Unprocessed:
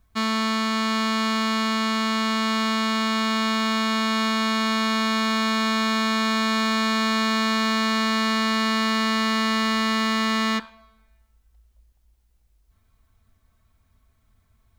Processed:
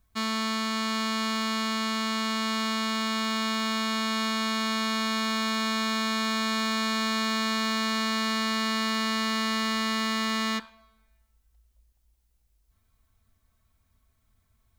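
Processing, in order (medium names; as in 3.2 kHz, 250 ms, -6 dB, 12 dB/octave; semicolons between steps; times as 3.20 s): treble shelf 4.1 kHz +6 dB; trim -6 dB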